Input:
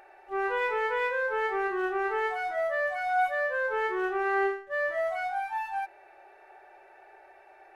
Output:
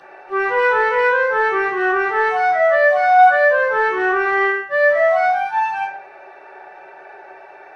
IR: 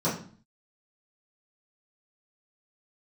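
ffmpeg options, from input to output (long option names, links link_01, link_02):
-filter_complex "[0:a]equalizer=frequency=2500:width=0.61:gain=12[link_01];[1:a]atrim=start_sample=2205,afade=type=out:start_time=0.25:duration=0.01,atrim=end_sample=11466[link_02];[link_01][link_02]afir=irnorm=-1:irlink=0,acrossover=split=110|600[link_03][link_04][link_05];[link_04]asoftclip=type=tanh:threshold=-18.5dB[link_06];[link_03][link_06][link_05]amix=inputs=3:normalize=0,volume=-2.5dB"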